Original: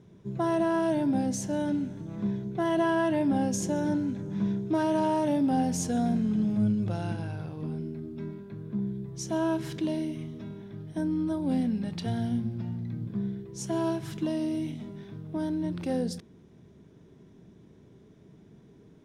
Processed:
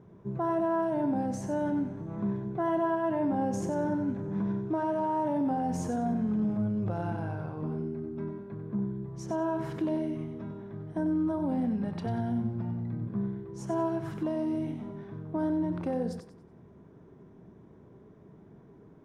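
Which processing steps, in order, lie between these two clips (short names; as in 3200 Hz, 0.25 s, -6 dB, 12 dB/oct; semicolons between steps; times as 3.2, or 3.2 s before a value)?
EQ curve 260 Hz 0 dB, 1100 Hz +6 dB, 3600 Hz -12 dB; limiter -23 dBFS, peak gain reduction 8.5 dB; on a send: thinning echo 94 ms, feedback 31%, level -8 dB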